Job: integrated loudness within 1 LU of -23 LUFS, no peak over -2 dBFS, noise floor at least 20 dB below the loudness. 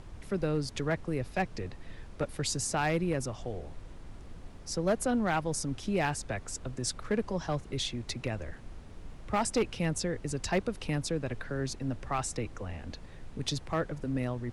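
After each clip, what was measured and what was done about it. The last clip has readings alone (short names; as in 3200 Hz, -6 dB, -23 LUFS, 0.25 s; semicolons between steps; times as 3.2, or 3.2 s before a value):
clipped 0.5%; flat tops at -21.5 dBFS; noise floor -48 dBFS; noise floor target -53 dBFS; loudness -33.0 LUFS; peak -21.5 dBFS; loudness target -23.0 LUFS
-> clip repair -21.5 dBFS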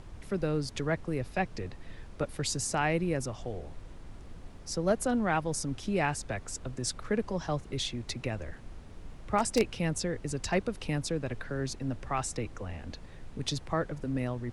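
clipped 0.0%; noise floor -48 dBFS; noise floor target -53 dBFS
-> noise print and reduce 6 dB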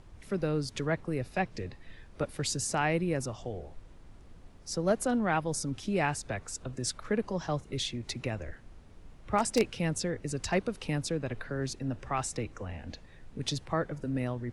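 noise floor -53 dBFS; loudness -33.0 LUFS; peak -12.5 dBFS; loudness target -23.0 LUFS
-> gain +10 dB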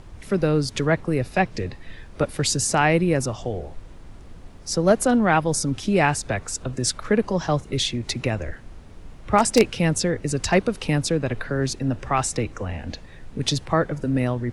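loudness -23.0 LUFS; peak -2.5 dBFS; noise floor -43 dBFS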